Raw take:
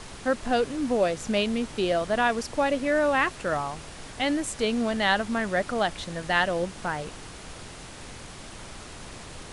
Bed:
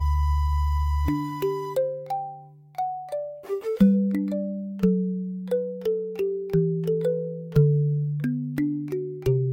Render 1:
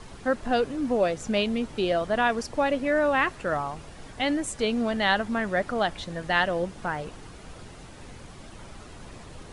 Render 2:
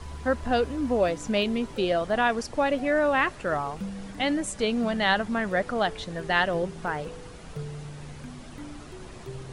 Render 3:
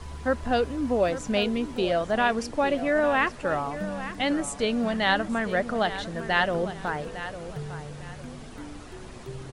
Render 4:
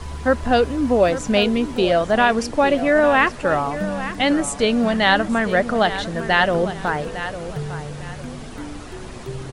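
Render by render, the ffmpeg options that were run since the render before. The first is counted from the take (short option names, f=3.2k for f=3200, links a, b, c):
-af "afftdn=nr=8:nf=-43"
-filter_complex "[1:a]volume=-17.5dB[a];[0:a][a]amix=inputs=2:normalize=0"
-filter_complex "[0:a]asplit=2[a][b];[b]adelay=854,lowpass=f=4.2k:p=1,volume=-12dB,asplit=2[c][d];[d]adelay=854,lowpass=f=4.2k:p=1,volume=0.33,asplit=2[e][f];[f]adelay=854,lowpass=f=4.2k:p=1,volume=0.33[g];[a][c][e][g]amix=inputs=4:normalize=0"
-af "volume=7.5dB,alimiter=limit=-3dB:level=0:latency=1"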